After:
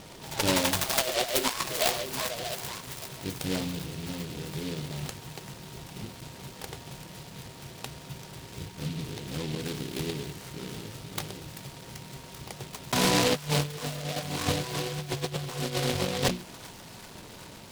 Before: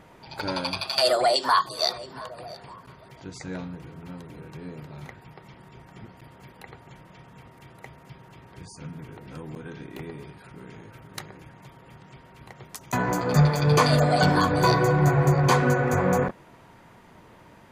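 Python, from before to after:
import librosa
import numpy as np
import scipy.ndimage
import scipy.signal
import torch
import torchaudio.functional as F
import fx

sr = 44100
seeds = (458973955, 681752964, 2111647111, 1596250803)

p1 = scipy.signal.sosfilt(scipy.signal.cheby1(5, 1.0, 3900.0, 'lowpass', fs=sr, output='sos'), x)
p2 = fx.hum_notches(p1, sr, base_hz=60, count=6)
p3 = fx.over_compress(p2, sr, threshold_db=-27.0, ratio=-0.5)
p4 = p3 + fx.echo_wet_highpass(p3, sr, ms=388, feedback_pct=77, hz=2400.0, wet_db=-7.5, dry=0)
y = fx.noise_mod_delay(p4, sr, seeds[0], noise_hz=3100.0, depth_ms=0.17)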